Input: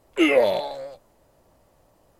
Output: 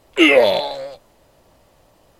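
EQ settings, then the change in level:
parametric band 3,300 Hz +6.5 dB 1.6 octaves
+5.0 dB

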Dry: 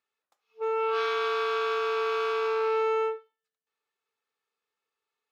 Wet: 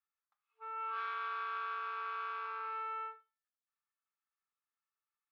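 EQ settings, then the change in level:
four-pole ladder band-pass 1,500 Hz, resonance 40%
0.0 dB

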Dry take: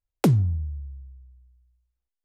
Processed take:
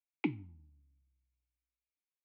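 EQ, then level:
formant filter u
transistor ladder low-pass 4,300 Hz, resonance 50%
flat-topped bell 2,000 Hz +12.5 dB 1.3 octaves
+5.5 dB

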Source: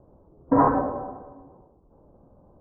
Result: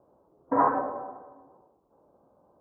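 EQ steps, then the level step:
high-pass filter 740 Hz 6 dB per octave
0.0 dB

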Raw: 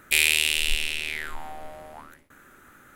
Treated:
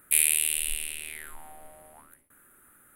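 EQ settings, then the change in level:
high shelf with overshoot 7,700 Hz +11 dB, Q 3
−10.0 dB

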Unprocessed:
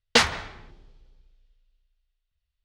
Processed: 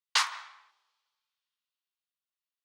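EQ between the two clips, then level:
four-pole ladder high-pass 950 Hz, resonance 65%
high-shelf EQ 2,700 Hz +11.5 dB
−3.5 dB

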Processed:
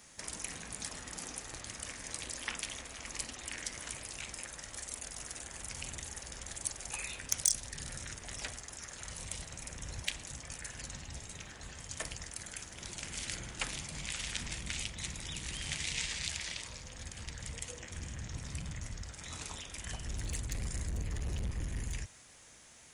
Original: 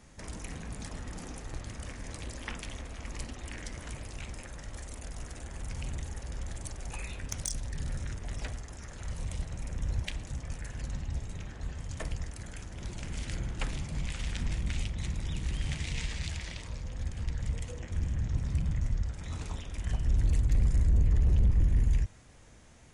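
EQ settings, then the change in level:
spectral tilt +3 dB per octave
−1.0 dB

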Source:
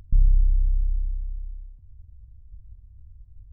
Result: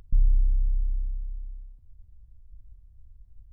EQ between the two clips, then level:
parametric band 91 Hz −9 dB 2 octaves
0.0 dB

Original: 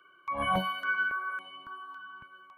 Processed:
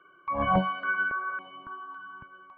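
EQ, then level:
head-to-tape spacing loss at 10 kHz 44 dB
+8.0 dB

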